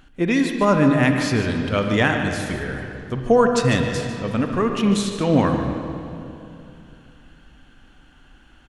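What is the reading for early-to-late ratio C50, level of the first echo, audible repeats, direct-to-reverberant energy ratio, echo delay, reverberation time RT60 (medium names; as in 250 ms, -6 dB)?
4.0 dB, -11.0 dB, 1, 4.0 dB, 148 ms, 2.7 s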